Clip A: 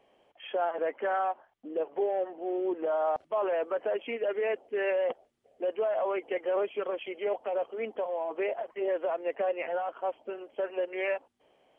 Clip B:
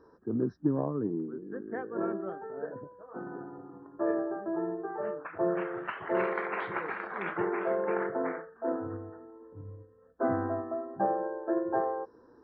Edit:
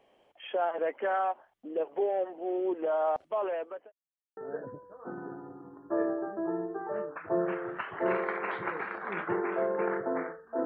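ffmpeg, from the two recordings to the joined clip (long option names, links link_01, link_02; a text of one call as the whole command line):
ffmpeg -i cue0.wav -i cue1.wav -filter_complex "[0:a]apad=whole_dur=10.65,atrim=end=10.65,asplit=2[link_01][link_02];[link_01]atrim=end=3.92,asetpts=PTS-STARTPTS,afade=type=out:start_time=3.04:duration=0.88:curve=qsin[link_03];[link_02]atrim=start=3.92:end=4.37,asetpts=PTS-STARTPTS,volume=0[link_04];[1:a]atrim=start=2.46:end=8.74,asetpts=PTS-STARTPTS,afade=type=in:duration=0.004:curve=hsin[link_05];[link_03][link_04][link_05]concat=n=3:v=0:a=1" out.wav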